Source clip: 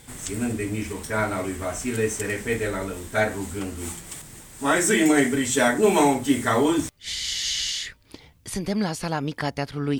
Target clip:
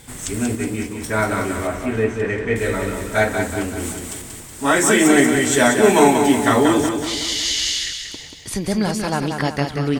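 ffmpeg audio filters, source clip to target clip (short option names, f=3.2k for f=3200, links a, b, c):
-filter_complex "[0:a]asettb=1/sr,asplit=3[a][b][c];[a]atrim=end=0.554[d];[b]atrim=start=0.55:end=1.02,asetpts=PTS-STARTPTS,afade=t=in:d=0.004:c=qsin,afade=t=out:st=0.466:d=0.004:c=qsin,agate=range=-33dB:threshold=-24dB:ratio=3:detection=peak[e];[c]atrim=start=1.016[f];[d][e]acrossfade=d=0.004:c1=hsin:c2=qsin[g];[g][f]acrossfade=d=0.004:c1=qsin:c2=hsin,asettb=1/sr,asplit=3[h][i][j];[h]atrim=end=1.674[k];[i]atrim=start=1.67:end=2.56,asetpts=PTS-STARTPTS,afade=t=in:d=0.004:c=qsin,afade=t=out:st=0.886:d=0.004:c=qsin,lowpass=2.4k[l];[j]atrim=start=2.556[m];[k][l]acrossfade=d=0.004:c1=hsin:c2=qsin[n];[n][m]acrossfade=d=0.004:c1=qsin:c2=hsin,asplit=2[o][p];[p]aecho=0:1:185|370|555|740|925|1110:0.501|0.251|0.125|0.0626|0.0313|0.0157[q];[o][q]amix=inputs=2:normalize=0,volume=4.5dB"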